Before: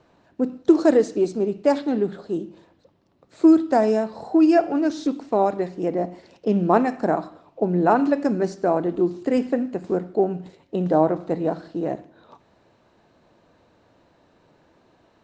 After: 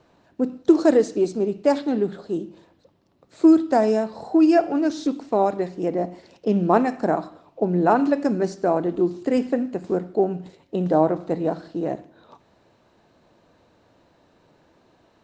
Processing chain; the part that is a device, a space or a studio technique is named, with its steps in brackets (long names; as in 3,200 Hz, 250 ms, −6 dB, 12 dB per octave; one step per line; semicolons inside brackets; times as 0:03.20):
exciter from parts (in parallel at −12 dB: high-pass filter 2,500 Hz 12 dB per octave + soft clipping −29.5 dBFS, distortion −17 dB)